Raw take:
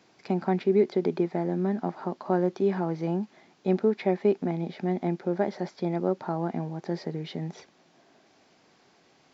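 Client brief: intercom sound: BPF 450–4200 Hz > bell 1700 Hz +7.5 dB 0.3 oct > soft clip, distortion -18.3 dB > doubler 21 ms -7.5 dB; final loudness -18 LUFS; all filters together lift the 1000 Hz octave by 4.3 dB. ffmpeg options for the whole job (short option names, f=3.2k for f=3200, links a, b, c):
-filter_complex "[0:a]highpass=450,lowpass=4.2k,equalizer=f=1k:t=o:g=6.5,equalizer=f=1.7k:t=o:w=0.3:g=7.5,asoftclip=threshold=-18dB,asplit=2[a][b];[b]adelay=21,volume=-7.5dB[c];[a][c]amix=inputs=2:normalize=0,volume=14dB"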